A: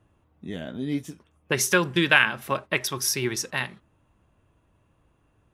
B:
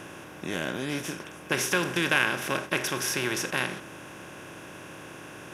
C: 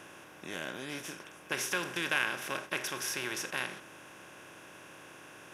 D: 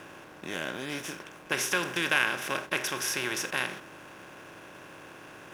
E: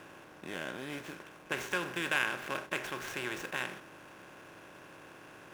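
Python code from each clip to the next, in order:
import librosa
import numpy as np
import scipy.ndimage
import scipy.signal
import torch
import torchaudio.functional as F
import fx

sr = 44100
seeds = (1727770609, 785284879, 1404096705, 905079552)

y1 = fx.bin_compress(x, sr, power=0.4)
y1 = y1 * librosa.db_to_amplitude(-8.5)
y2 = fx.low_shelf(y1, sr, hz=370.0, db=-8.0)
y2 = y2 * librosa.db_to_amplitude(-6.0)
y3 = fx.backlash(y2, sr, play_db=-50.5)
y3 = y3 * librosa.db_to_amplitude(5.0)
y4 = scipy.ndimage.median_filter(y3, 9, mode='constant')
y4 = y4 * librosa.db_to_amplitude(-4.5)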